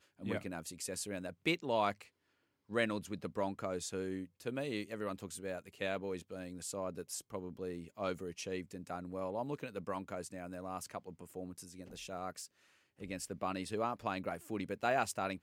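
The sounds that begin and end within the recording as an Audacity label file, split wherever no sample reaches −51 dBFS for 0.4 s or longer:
2.690000	12.460000	sound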